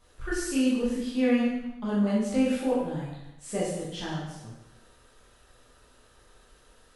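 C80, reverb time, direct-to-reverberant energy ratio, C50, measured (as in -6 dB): 3.5 dB, 0.95 s, -8.5 dB, 1.0 dB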